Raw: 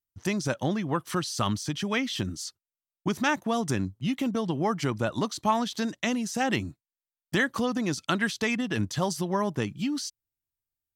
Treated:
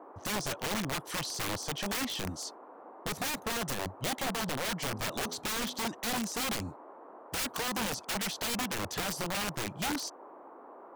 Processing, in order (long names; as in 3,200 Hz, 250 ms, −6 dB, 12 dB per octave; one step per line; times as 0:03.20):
noise in a band 270–1,100 Hz −47 dBFS
0:04.83–0:05.78: hum removal 83.04 Hz, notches 10
wrap-around overflow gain 24.5 dB
level −3.5 dB